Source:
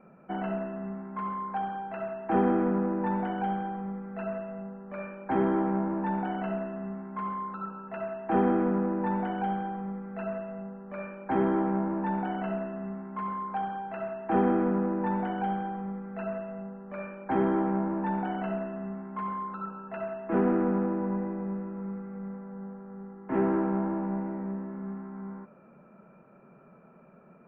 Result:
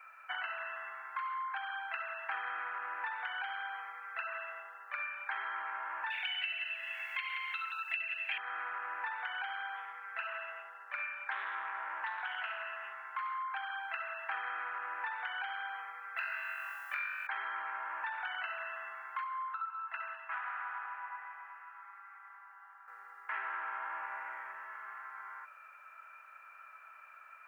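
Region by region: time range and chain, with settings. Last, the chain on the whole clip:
6.10–8.38 s: resonant high shelf 1.8 kHz +12.5 dB, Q 3 + delay 175 ms -6.5 dB
9.76–13.46 s: band-stop 1.2 kHz, Q 20 + loudspeaker Doppler distortion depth 0.18 ms
16.17–17.27 s: tilt EQ +4 dB/octave + flutter echo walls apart 3.7 m, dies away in 0.9 s
19.24–22.88 s: ladder high-pass 720 Hz, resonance 40% + feedback echo behind a high-pass 201 ms, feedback 44%, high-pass 1.8 kHz, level -13.5 dB
whole clip: high-pass 1.4 kHz 24 dB/octave; compression, threshold -50 dBFS; trim +14 dB

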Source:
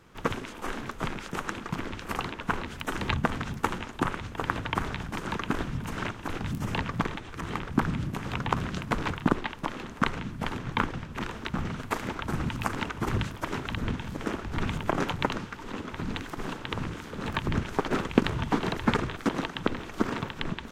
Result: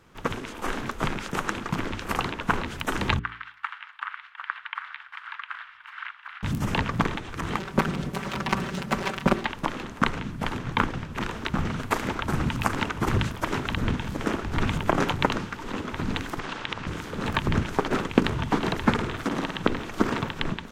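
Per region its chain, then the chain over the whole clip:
3.19–6.43 s: inverse Chebyshev high-pass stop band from 500 Hz, stop band 50 dB + distance through air 460 m + band-stop 2.5 kHz, Q 28
7.57–9.45 s: comb filter that takes the minimum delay 5.2 ms + high-pass 85 Hz 6 dB/octave
16.39–16.87 s: low-pass 5.5 kHz + compression, threshold -33 dBFS + tilt shelf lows -5.5 dB, about 660 Hz
18.92–19.62 s: flutter echo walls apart 9.3 m, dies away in 0.45 s + compression 1.5:1, threshold -34 dBFS
whole clip: de-hum 57.1 Hz, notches 8; level rider gain up to 5 dB

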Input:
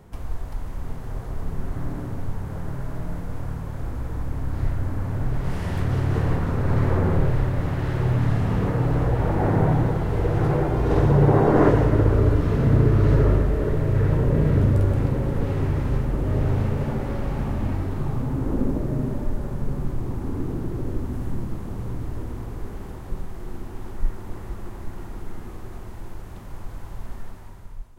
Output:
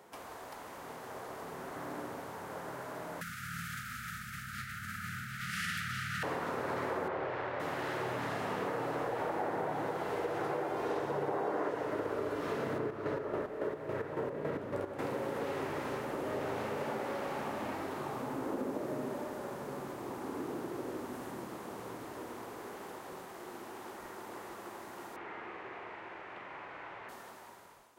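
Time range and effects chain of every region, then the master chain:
3.21–6.23 s: brick-wall FIR band-stop 230–1200 Hz + level flattener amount 70%
7.08–7.60 s: low-pass 3.1 kHz + peaking EQ 200 Hz -9 dB 1.1 oct + loudspeaker Doppler distortion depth 0.28 ms
12.78–14.99 s: treble shelf 3 kHz -9.5 dB + square tremolo 3.6 Hz, depth 60%, duty 45%
25.16–27.09 s: resonant low-pass 2.3 kHz, resonance Q 2.2 + peaking EQ 220 Hz -9 dB 0.24 oct + flutter echo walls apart 7.4 m, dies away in 0.32 s
whole clip: high-pass 470 Hz 12 dB/octave; compression 6:1, threshold -32 dBFS

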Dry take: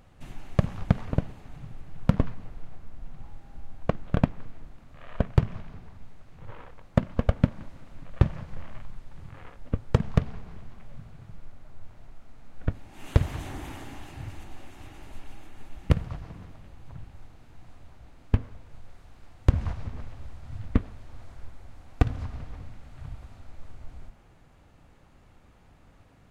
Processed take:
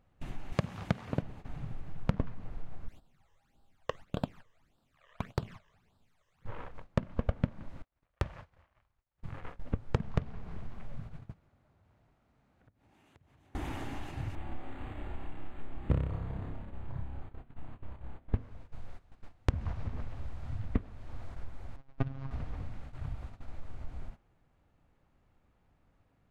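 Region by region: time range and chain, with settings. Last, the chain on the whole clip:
0.52–1.22 s: high-pass 100 Hz + treble shelf 2.3 kHz +8.5 dB
2.88–6.45 s: tilt EQ +3.5 dB/octave + phase shifter stages 12, 1.7 Hz, lowest notch 230–2200 Hz
7.82–9.23 s: high-pass 51 Hz + expander -40 dBFS + peaking EQ 180 Hz -14 dB 2.1 oct
11.31–13.55 s: high-pass 68 Hz + compression 8:1, threshold -48 dBFS
14.35–18.35 s: flutter echo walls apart 5.2 m, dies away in 0.61 s + decimation joined by straight lines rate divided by 8×
21.76–22.31 s: robot voice 135 Hz + distance through air 100 m
whole clip: gate -43 dBFS, range -16 dB; treble shelf 4.3 kHz -8 dB; compression 2:1, threshold -37 dBFS; trim +3 dB

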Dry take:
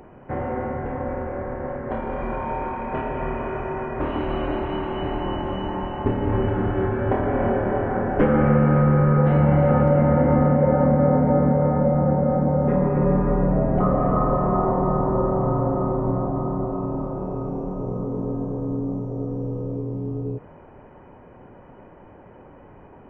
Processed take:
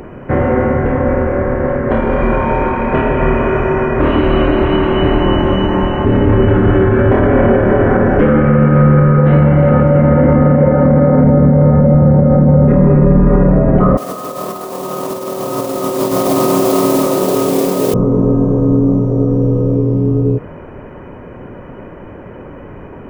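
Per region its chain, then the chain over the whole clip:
11.24–13.29 s: bass shelf 330 Hz +8 dB + hum notches 60/120/180/240/300/360/420/480 Hz
13.97–17.94 s: high-pass 320 Hz + modulation noise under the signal 14 dB + compressor with a negative ratio -29 dBFS, ratio -0.5
whole clip: peaking EQ 810 Hz -8 dB 0.5 oct; loudness maximiser +16.5 dB; trim -1 dB

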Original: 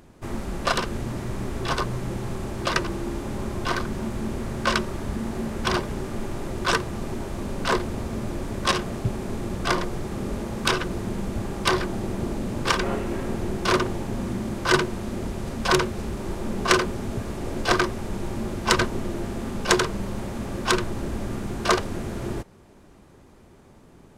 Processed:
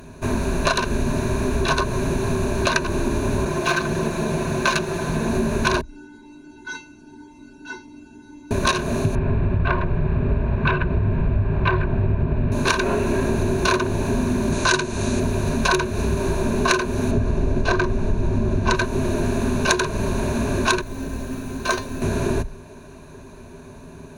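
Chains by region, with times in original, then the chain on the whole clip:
3.45–5.29 s: comb filter that takes the minimum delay 5.8 ms + high-pass 86 Hz 6 dB/octave + loudspeaker Doppler distortion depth 0.11 ms
5.81–8.51 s: distance through air 91 m + feedback comb 300 Hz, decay 0.31 s, harmonics odd, mix 100% + Shepard-style phaser rising 1.9 Hz
9.15–12.52 s: low-pass 2.7 kHz 24 dB/octave + resonant low shelf 180 Hz +8 dB, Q 1.5
14.52–15.20 s: low-pass 9.2 kHz 24 dB/octave + treble shelf 3.8 kHz +9.5 dB
17.11–18.75 s: low-pass 8.8 kHz + tilt EQ -2 dB/octave
20.81–22.02 s: feedback comb 260 Hz, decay 0.19 s, mix 80% + companded quantiser 6-bit
whole clip: rippled EQ curve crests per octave 1.5, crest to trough 12 dB; compression 6:1, threshold -25 dBFS; trim +8.5 dB

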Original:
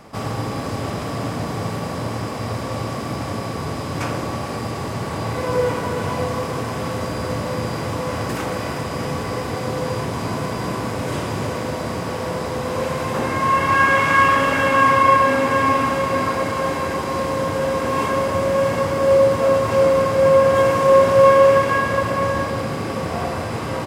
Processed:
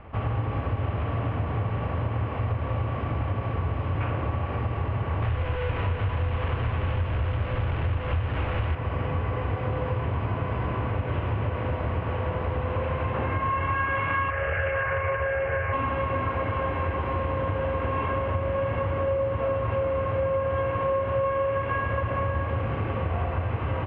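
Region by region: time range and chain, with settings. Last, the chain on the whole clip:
5.22–8.75 s: one-bit comparator + peaking EQ 80 Hz +7 dB 1 oct
14.30–15.73 s: static phaser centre 1 kHz, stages 6 + doubling 13 ms -12 dB + loudspeaker Doppler distortion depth 0.17 ms
whole clip: elliptic low-pass 2.9 kHz, stop band 70 dB; resonant low shelf 120 Hz +12 dB, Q 1.5; compression, threshold -20 dBFS; trim -3 dB

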